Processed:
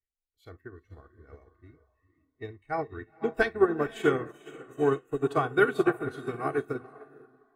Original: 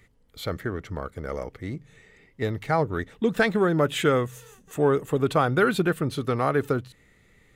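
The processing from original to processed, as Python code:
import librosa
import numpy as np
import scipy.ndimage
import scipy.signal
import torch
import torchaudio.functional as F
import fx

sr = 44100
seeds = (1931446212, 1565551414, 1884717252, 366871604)

p1 = fx.low_shelf(x, sr, hz=68.0, db=7.5)
p2 = p1 + 0.68 * np.pad(p1, (int(2.7 * sr / 1000.0), 0))[:len(p1)]
p3 = p2 + fx.echo_diffused(p2, sr, ms=487, feedback_pct=44, wet_db=-6.5, dry=0)
p4 = fx.rev_gated(p3, sr, seeds[0], gate_ms=100, shape='flat', drr_db=11.0)
p5 = fx.noise_reduce_blind(p4, sr, reduce_db=14)
p6 = fx.upward_expand(p5, sr, threshold_db=-32.0, expansion=2.5)
y = p6 * librosa.db_to_amplitude(-1.5)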